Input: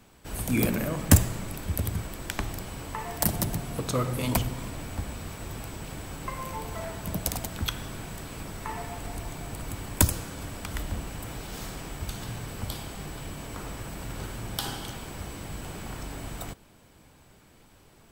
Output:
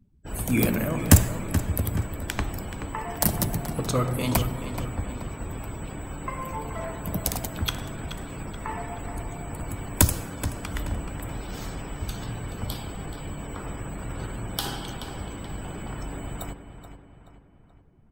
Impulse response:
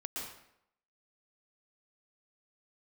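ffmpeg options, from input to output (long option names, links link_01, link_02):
-filter_complex "[0:a]afftdn=noise_reduction=33:noise_floor=-47,asplit=2[link_01][link_02];[link_02]adelay=428,lowpass=frequency=4200:poles=1,volume=-10dB,asplit=2[link_03][link_04];[link_04]adelay=428,lowpass=frequency=4200:poles=1,volume=0.47,asplit=2[link_05][link_06];[link_06]adelay=428,lowpass=frequency=4200:poles=1,volume=0.47,asplit=2[link_07][link_08];[link_08]adelay=428,lowpass=frequency=4200:poles=1,volume=0.47,asplit=2[link_09][link_10];[link_10]adelay=428,lowpass=frequency=4200:poles=1,volume=0.47[link_11];[link_03][link_05][link_07][link_09][link_11]amix=inputs=5:normalize=0[link_12];[link_01][link_12]amix=inputs=2:normalize=0,volume=2.5dB"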